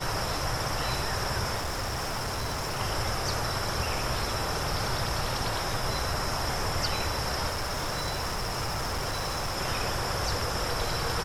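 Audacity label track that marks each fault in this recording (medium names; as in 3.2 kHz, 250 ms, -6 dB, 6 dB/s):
1.560000	2.810000	clipped -28 dBFS
7.490000	9.580000	clipped -27 dBFS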